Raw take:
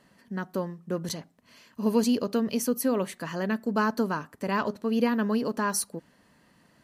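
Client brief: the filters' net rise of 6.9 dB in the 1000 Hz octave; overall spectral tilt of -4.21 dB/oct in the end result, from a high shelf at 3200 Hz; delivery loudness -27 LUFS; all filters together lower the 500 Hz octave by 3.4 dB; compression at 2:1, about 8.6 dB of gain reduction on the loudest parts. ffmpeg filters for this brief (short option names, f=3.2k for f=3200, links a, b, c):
-af "equalizer=f=500:t=o:g=-6,equalizer=f=1k:t=o:g=8.5,highshelf=f=3.2k:g=4.5,acompressor=threshold=-34dB:ratio=2,volume=7dB"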